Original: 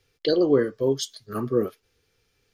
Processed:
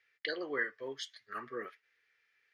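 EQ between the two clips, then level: band-pass 1900 Hz, Q 5.3; +8.0 dB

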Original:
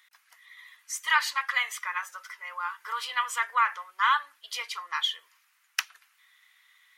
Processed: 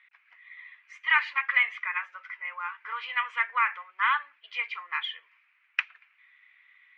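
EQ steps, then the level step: ladder low-pass 2600 Hz, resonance 65%; +6.5 dB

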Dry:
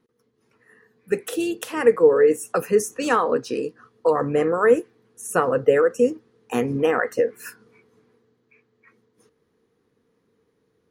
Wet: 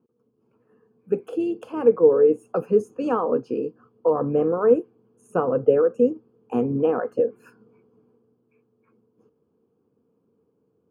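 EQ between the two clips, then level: running mean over 23 samples; HPF 86 Hz; bell 230 Hz +2 dB; 0.0 dB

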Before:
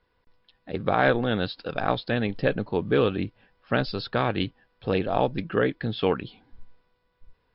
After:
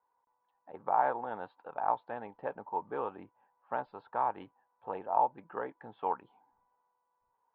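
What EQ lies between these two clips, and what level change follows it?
band-pass 900 Hz, Q 8.3; air absorption 460 m; +7.5 dB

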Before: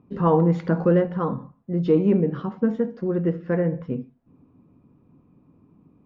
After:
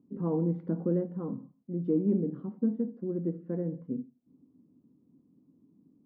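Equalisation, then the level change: band-pass 260 Hz, Q 2; -4.0 dB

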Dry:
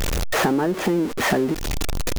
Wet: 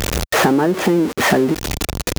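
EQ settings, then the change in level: HPF 60 Hz 12 dB/oct; +5.5 dB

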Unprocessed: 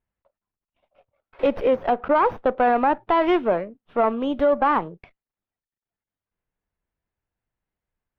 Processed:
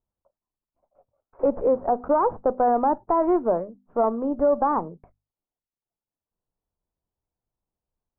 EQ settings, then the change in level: LPF 1100 Hz 24 dB/oct; notches 50/100/150/200/250 Hz; -1.0 dB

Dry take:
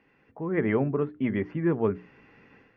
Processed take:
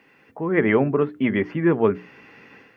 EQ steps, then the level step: HPF 180 Hz 6 dB/oct; high shelf 2900 Hz +8 dB; +7.5 dB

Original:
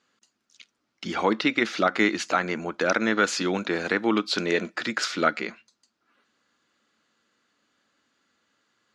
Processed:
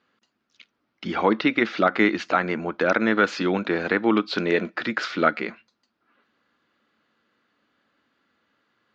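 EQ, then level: air absorption 220 m; +3.5 dB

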